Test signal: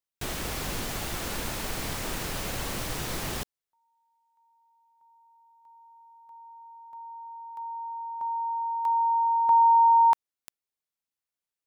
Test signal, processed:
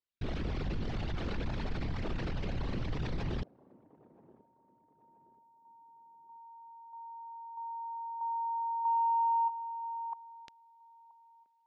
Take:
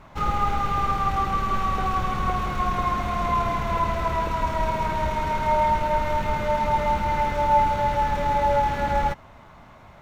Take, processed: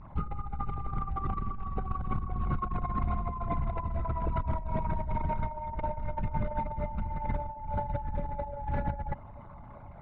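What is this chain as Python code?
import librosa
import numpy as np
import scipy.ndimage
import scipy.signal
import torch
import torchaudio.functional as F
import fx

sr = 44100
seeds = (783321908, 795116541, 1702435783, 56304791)

y = fx.envelope_sharpen(x, sr, power=2.0)
y = scipy.signal.sosfilt(scipy.signal.butter(4, 4700.0, 'lowpass', fs=sr, output='sos'), y)
y = fx.peak_eq(y, sr, hz=870.0, db=-4.0, octaves=1.8)
y = fx.over_compress(y, sr, threshold_db=-28.0, ratio=-0.5)
y = fx.echo_wet_bandpass(y, sr, ms=977, feedback_pct=31, hz=440.0, wet_db=-18.5)
y = F.gain(torch.from_numpy(y), -2.5).numpy()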